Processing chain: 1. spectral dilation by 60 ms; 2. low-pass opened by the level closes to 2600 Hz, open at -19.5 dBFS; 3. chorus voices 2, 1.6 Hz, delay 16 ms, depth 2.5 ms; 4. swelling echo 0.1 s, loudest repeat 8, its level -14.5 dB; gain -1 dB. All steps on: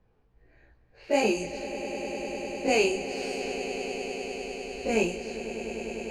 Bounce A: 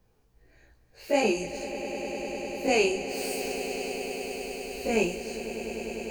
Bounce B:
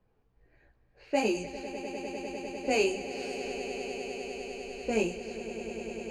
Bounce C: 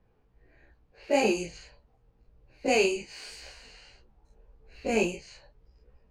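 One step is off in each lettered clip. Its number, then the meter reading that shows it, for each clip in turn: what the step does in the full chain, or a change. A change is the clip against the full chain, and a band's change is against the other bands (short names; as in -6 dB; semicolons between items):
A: 2, 8 kHz band +2.0 dB; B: 1, loudness change -3.5 LU; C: 4, echo-to-direct -3.0 dB to none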